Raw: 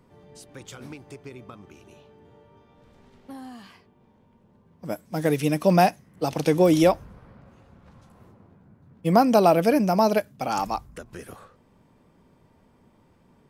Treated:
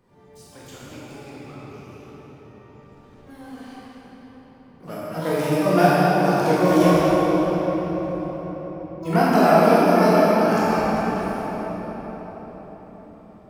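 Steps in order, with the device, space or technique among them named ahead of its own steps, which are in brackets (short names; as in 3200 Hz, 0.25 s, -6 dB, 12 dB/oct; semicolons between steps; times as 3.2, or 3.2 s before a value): shimmer-style reverb (harmoniser +12 st -8 dB; reverb RT60 5.3 s, pre-delay 19 ms, DRR -9 dB); gain -6.5 dB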